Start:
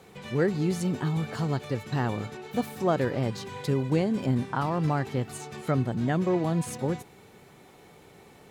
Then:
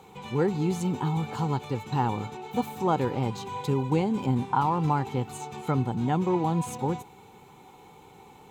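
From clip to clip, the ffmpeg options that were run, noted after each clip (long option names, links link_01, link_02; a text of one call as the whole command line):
ffmpeg -i in.wav -af "superequalizer=8b=0.501:9b=2.51:11b=0.447:14b=0.562:16b=0.631" out.wav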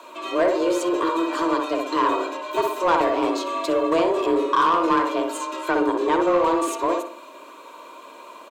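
ffmpeg -i in.wav -filter_complex "[0:a]asplit=2[link_01][link_02];[link_02]adelay=61,lowpass=frequency=1200:poles=1,volume=-3dB,asplit=2[link_03][link_04];[link_04]adelay=61,lowpass=frequency=1200:poles=1,volume=0.41,asplit=2[link_05][link_06];[link_06]adelay=61,lowpass=frequency=1200:poles=1,volume=0.41,asplit=2[link_07][link_08];[link_08]adelay=61,lowpass=frequency=1200:poles=1,volume=0.41,asplit=2[link_09][link_10];[link_10]adelay=61,lowpass=frequency=1200:poles=1,volume=0.41[link_11];[link_01][link_03][link_05][link_07][link_09][link_11]amix=inputs=6:normalize=0,afreqshift=170,asplit=2[link_12][link_13];[link_13]highpass=frequency=720:poles=1,volume=15dB,asoftclip=type=tanh:threshold=-9dB[link_14];[link_12][link_14]amix=inputs=2:normalize=0,lowpass=frequency=7300:poles=1,volume=-6dB" out.wav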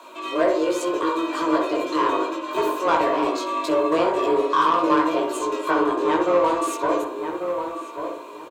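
ffmpeg -i in.wav -filter_complex "[0:a]highpass=48,asplit=2[link_01][link_02];[link_02]adelay=19,volume=-3.5dB[link_03];[link_01][link_03]amix=inputs=2:normalize=0,asplit=2[link_04][link_05];[link_05]adelay=1141,lowpass=frequency=1800:poles=1,volume=-7dB,asplit=2[link_06][link_07];[link_07]adelay=1141,lowpass=frequency=1800:poles=1,volume=0.25,asplit=2[link_08][link_09];[link_09]adelay=1141,lowpass=frequency=1800:poles=1,volume=0.25[link_10];[link_04][link_06][link_08][link_10]amix=inputs=4:normalize=0,volume=-2dB" out.wav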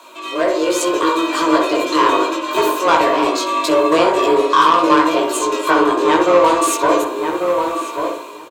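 ffmpeg -i in.wav -af "highshelf=frequency=2200:gain=7.5,dynaudnorm=framelen=260:gausssize=5:maxgain=10dB" out.wav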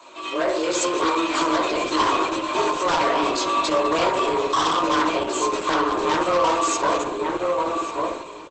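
ffmpeg -i in.wav -filter_complex "[0:a]acrossover=split=180|700|7300[link_01][link_02][link_03][link_04];[link_02]alimiter=limit=-16.5dB:level=0:latency=1:release=159[link_05];[link_03]aeval=exprs='0.224*(abs(mod(val(0)/0.224+3,4)-2)-1)':channel_layout=same[link_06];[link_01][link_05][link_06][link_04]amix=inputs=4:normalize=0,volume=-2.5dB" -ar 48000 -c:a libopus -b:a 12k out.opus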